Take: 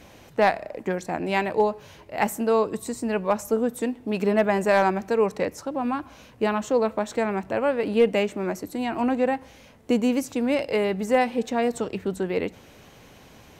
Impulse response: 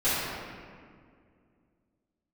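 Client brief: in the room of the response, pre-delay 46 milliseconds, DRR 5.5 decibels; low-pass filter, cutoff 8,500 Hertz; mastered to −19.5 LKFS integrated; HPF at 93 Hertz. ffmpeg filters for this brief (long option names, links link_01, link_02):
-filter_complex "[0:a]highpass=93,lowpass=8500,asplit=2[link_01][link_02];[1:a]atrim=start_sample=2205,adelay=46[link_03];[link_02][link_03]afir=irnorm=-1:irlink=0,volume=-19.5dB[link_04];[link_01][link_04]amix=inputs=2:normalize=0,volume=4dB"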